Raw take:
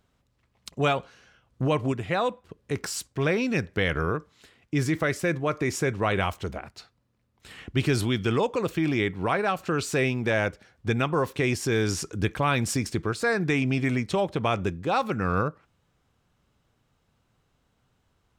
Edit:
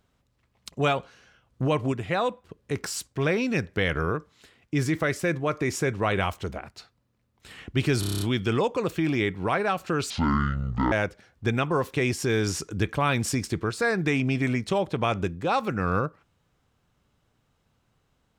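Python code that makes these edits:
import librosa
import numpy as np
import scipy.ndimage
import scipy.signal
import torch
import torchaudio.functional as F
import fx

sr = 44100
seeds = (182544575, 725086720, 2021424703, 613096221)

y = fx.edit(x, sr, fx.stutter(start_s=8.0, slice_s=0.03, count=8),
    fx.speed_span(start_s=9.89, length_s=0.45, speed=0.55), tone=tone)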